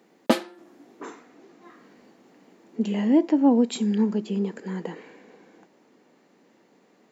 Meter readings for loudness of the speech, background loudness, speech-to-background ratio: −23.5 LKFS, −26.0 LKFS, 2.5 dB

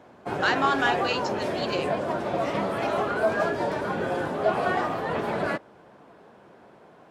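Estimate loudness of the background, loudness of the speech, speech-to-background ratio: −27.5 LKFS, −27.5 LKFS, 0.0 dB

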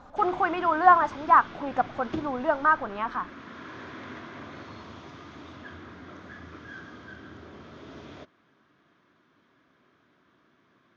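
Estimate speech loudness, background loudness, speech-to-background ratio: −24.0 LKFS, −43.0 LKFS, 19.0 dB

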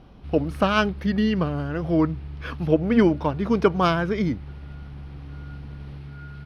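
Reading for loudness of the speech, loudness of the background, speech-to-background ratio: −23.0 LKFS, −38.5 LKFS, 15.5 dB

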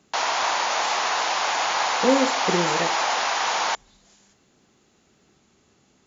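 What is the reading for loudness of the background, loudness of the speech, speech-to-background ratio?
−23.0 LKFS, −25.0 LKFS, −2.0 dB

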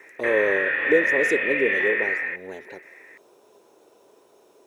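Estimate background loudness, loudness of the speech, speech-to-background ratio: −22.5 LKFS, −25.5 LKFS, −3.0 dB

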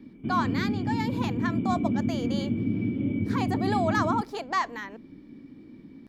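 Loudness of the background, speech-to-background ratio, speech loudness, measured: −28.5 LKFS, −3.0 dB, −31.5 LKFS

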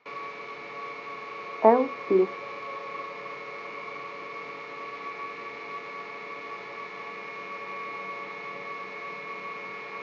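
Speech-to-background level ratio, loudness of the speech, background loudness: 13.5 dB, −23.5 LKFS, −37.0 LKFS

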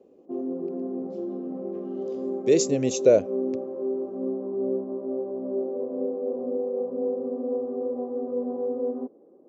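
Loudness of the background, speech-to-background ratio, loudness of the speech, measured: −30.5 LKFS, 8.0 dB, −22.5 LKFS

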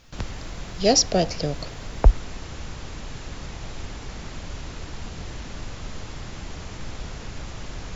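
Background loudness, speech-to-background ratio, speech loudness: −37.5 LKFS, 15.5 dB, −22.0 LKFS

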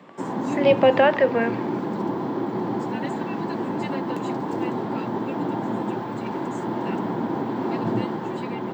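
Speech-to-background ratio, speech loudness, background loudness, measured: 7.5 dB, −20.0 LKFS, −27.5 LKFS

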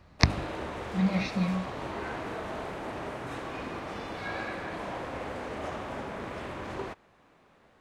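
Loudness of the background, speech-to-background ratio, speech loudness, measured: −37.0 LKFS, 7.0 dB, −30.0 LKFS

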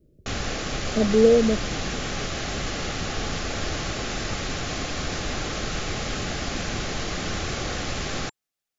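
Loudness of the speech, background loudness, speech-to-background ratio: −20.5 LKFS, −29.0 LKFS, 8.5 dB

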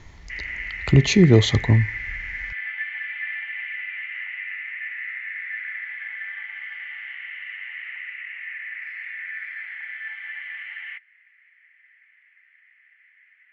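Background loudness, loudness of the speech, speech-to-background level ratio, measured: −31.0 LKFS, −17.5 LKFS, 13.5 dB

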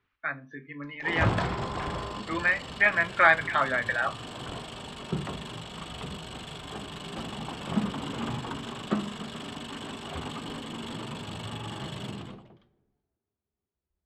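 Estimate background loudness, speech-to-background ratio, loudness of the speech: −35.5 LKFS, 10.0 dB, −25.5 LKFS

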